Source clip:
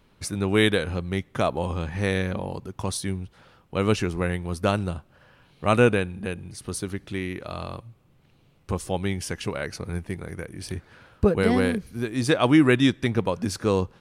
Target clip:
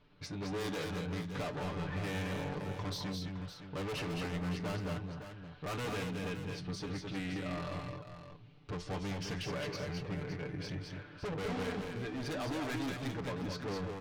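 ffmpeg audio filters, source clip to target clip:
ffmpeg -i in.wav -af "lowpass=frequency=5000:width=0.5412,lowpass=frequency=5000:width=1.3066,aecho=1:1:6.8:0.81,dynaudnorm=framelen=130:gausssize=17:maxgain=3dB,asoftclip=type=hard:threshold=-21.5dB,flanger=delay=9.8:depth=2.3:regen=66:speed=1.1:shape=sinusoidal,asoftclip=type=tanh:threshold=-33.5dB,aecho=1:1:193|215|563:0.224|0.596|0.299,volume=-3dB" out.wav

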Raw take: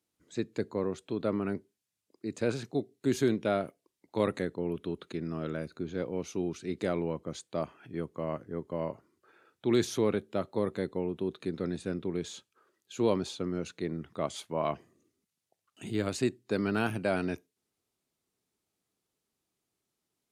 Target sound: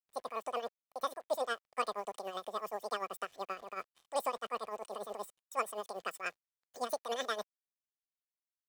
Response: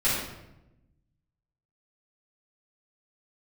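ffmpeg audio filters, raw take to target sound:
-filter_complex "[0:a]aecho=1:1:3.9:0.68,asplit=2[link_01][link_02];[link_02]acompressor=threshold=-39dB:ratio=6,volume=-2dB[link_03];[link_01][link_03]amix=inputs=2:normalize=0,acrusher=bits=7:mix=0:aa=0.5,tremolo=f=4.5:d=0.69,asetrate=103194,aresample=44100,volume=-6.5dB"

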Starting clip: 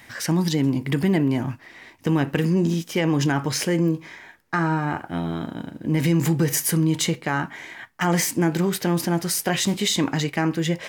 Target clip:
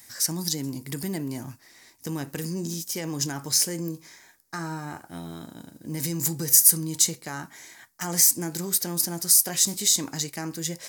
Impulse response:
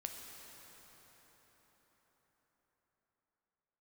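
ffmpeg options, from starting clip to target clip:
-af "aexciter=amount=9.8:drive=1.7:freq=4300,volume=-11dB"

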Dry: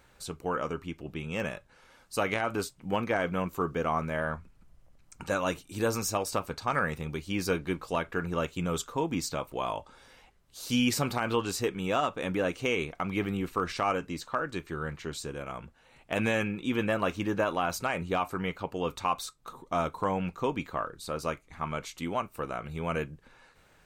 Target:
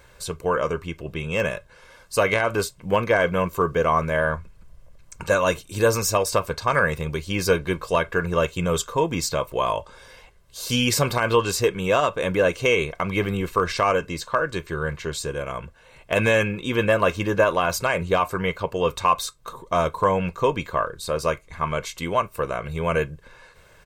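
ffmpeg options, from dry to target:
ffmpeg -i in.wav -af "aecho=1:1:1.9:0.53,volume=7.5dB" out.wav

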